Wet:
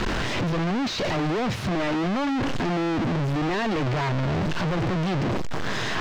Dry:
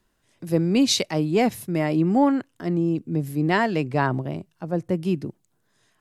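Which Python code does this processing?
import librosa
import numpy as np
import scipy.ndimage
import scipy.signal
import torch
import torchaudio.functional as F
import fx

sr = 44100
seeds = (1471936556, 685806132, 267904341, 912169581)

y = np.sign(x) * np.sqrt(np.mean(np.square(x)))
y = fx.air_absorb(y, sr, metres=170.0)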